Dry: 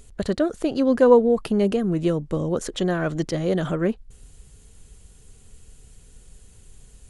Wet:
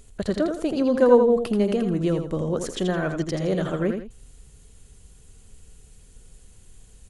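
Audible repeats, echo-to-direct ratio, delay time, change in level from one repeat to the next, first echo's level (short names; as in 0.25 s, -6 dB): 2, -6.0 dB, 82 ms, -10.0 dB, -6.5 dB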